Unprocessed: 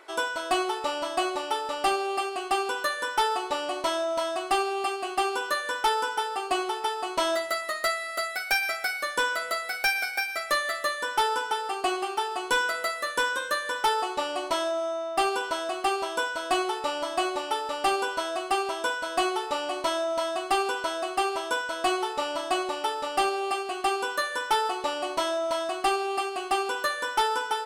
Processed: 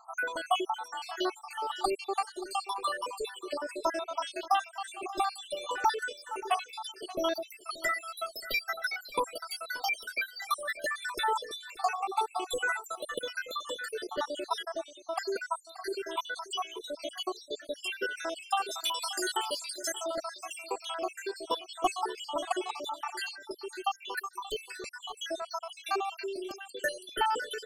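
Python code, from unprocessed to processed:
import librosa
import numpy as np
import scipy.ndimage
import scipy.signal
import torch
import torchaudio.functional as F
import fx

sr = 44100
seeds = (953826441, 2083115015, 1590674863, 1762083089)

p1 = fx.spec_dropout(x, sr, seeds[0], share_pct=76)
p2 = fx.tilt_eq(p1, sr, slope=4.0, at=(18.66, 20.03), fade=0.02)
y = p2 + fx.echo_single(p2, sr, ms=580, db=-17.0, dry=0)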